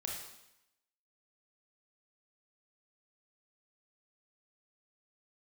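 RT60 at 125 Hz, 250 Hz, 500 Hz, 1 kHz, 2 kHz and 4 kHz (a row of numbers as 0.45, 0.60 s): 0.85, 0.85, 0.85, 0.90, 0.90, 0.85 s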